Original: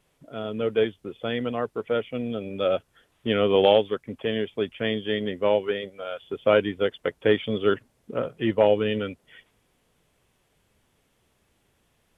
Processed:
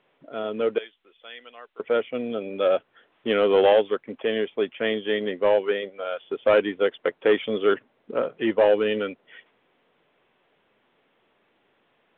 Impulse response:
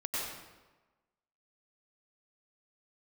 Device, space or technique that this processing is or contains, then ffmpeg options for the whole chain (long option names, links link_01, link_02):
telephone: -filter_complex "[0:a]asettb=1/sr,asplit=3[link_01][link_02][link_03];[link_01]atrim=end=0.784[link_04];[link_02]atrim=start=0.78:end=1.8,asetpts=PTS-STARTPTS,afade=type=in:duration=0.004:curve=qsin,afade=type=out:start_time=1.016:duration=0.004:curve=qsin,aderivative[link_05];[link_03]atrim=start=1.796[link_06];[link_04][link_05]acrossfade=duration=0.004:curve1=hsin:curve2=qsin[link_07];[link_07][link_06]acrossfade=duration=0.004:curve1=qsin:curve2=hsin,highpass=290,lowpass=3000,asoftclip=type=tanh:threshold=-14dB,volume=4dB" -ar 8000 -c:a pcm_mulaw